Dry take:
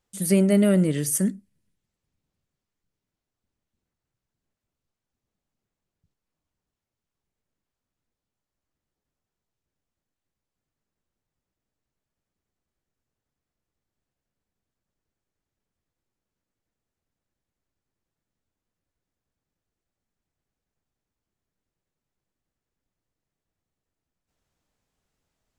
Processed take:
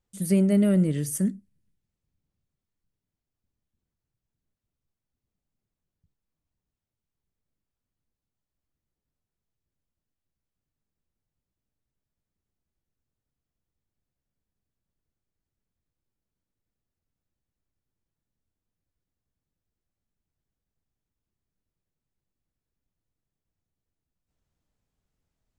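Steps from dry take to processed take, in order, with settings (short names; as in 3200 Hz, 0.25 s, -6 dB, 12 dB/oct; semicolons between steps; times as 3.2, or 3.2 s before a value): low shelf 250 Hz +9.5 dB; gain -7 dB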